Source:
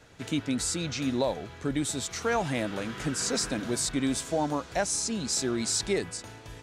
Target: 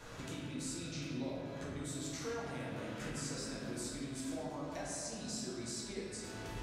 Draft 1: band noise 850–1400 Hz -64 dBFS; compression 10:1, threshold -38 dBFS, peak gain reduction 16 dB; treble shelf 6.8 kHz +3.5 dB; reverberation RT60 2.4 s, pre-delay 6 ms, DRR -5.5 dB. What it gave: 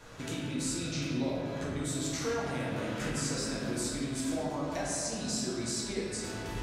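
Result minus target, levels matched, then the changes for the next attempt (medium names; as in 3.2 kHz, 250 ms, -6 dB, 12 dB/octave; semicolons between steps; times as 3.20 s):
compression: peak gain reduction -8 dB
change: compression 10:1, threshold -47 dBFS, peak gain reduction 24 dB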